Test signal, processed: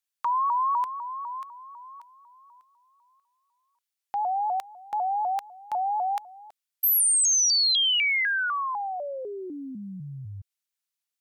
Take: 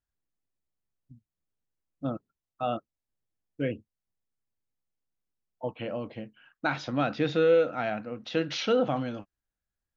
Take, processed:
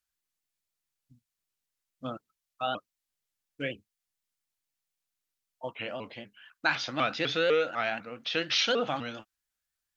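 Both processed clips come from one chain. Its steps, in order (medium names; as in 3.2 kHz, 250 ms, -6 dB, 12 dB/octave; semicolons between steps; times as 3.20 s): tilt shelf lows -8.5 dB, about 940 Hz; vibrato with a chosen wave saw up 4 Hz, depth 160 cents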